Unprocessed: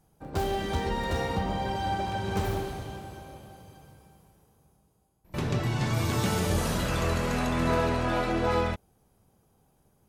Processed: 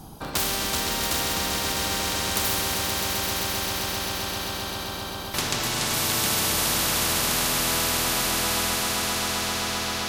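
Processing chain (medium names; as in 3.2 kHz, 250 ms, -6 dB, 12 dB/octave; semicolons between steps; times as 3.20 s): ten-band graphic EQ 250 Hz +4 dB, 500 Hz -8 dB, 1 kHz +4 dB, 2 kHz -10 dB, 4 kHz +6 dB, 8 kHz -5 dB; echo with a slow build-up 131 ms, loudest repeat 5, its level -10.5 dB; spectrum-flattening compressor 4:1; trim +8.5 dB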